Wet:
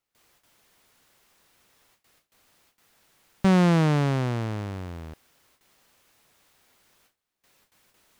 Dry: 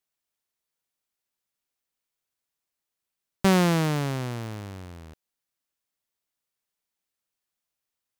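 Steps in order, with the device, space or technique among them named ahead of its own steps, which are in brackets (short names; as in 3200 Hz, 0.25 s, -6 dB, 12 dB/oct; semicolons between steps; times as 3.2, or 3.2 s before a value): compact cassette (soft clip -20 dBFS, distortion -13 dB; LPF 9700 Hz 12 dB/oct; wow and flutter 15 cents; white noise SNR 29 dB); gate with hold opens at -53 dBFS; high shelf 3900 Hz -8.5 dB; gain +5.5 dB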